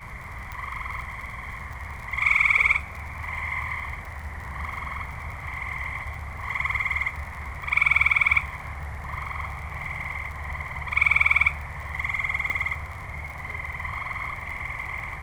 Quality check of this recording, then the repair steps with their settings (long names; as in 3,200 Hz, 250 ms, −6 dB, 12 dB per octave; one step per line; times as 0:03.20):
surface crackle 56 per second −35 dBFS
0:00.52: click
0:12.50: click −17 dBFS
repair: click removal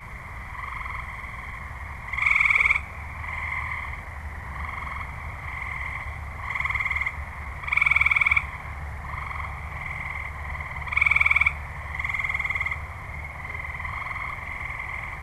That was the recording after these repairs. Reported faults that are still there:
0:00.52: click
0:12.50: click